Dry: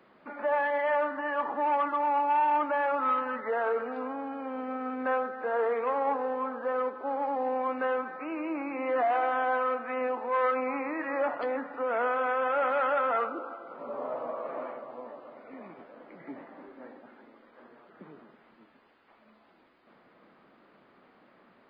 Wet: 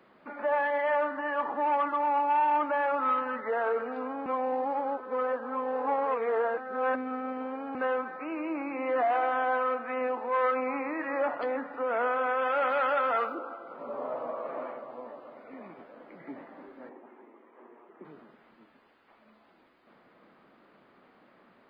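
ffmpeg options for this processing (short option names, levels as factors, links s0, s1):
-filter_complex "[0:a]asettb=1/sr,asplit=3[s0][s1][s2];[s0]atrim=end=12.384[s3];[s1]atrim=start=12.38:end=13.35,asetpts=PTS-STARTPTS,afade=t=in:d=0.004:c=qsin,afade=t=out:st=0.966:d=0.004:c=qsin,aemphasis=mode=production:type=75fm[s4];[s2]atrim=start=13.346[s5];[s3][s4]acrossfade=d=0.004:c1=hsin:c2=qsin[s6];[s6][s5]acrossfade=d=0.004:c1=qsin:c2=hsin,asettb=1/sr,asplit=3[s7][s8][s9];[s7]atrim=end=16.894[s10];[s8]atrim=start=16.89:end=18.05,asetpts=PTS-STARTPTS,afade=t=in:d=0.004:c=qsin,afade=t=out:st=1.156:d=0.004:c=qsin,highpass=260,equalizer=f=370:t=q:w=4:g=8,equalizer=f=560:t=q:w=4:g=-4,equalizer=f=970:t=q:w=4:g=4,equalizer=f=1500:t=q:w=4:g=-8,lowpass=f=2500:w=0.5412,lowpass=f=2500:w=1.3066[s11];[s9]atrim=start=18.046[s12];[s10][s11]acrossfade=d=0.004:c1=hsin:c2=qsin[s13];[s13][s12]acrossfade=d=0.004:c1=qsin:c2=hsin,asplit=3[s14][s15][s16];[s14]atrim=end=4.262[s17];[s15]atrim=start=4.258:end=7.752,asetpts=PTS-STARTPTS,areverse[s18];[s16]atrim=start=7.748[s19];[s17][s18]acrossfade=d=0.004:c1=hsin:c2=hsin[s20];[s20][s19]acrossfade=d=0.004:c1=hsin:c2=hsin"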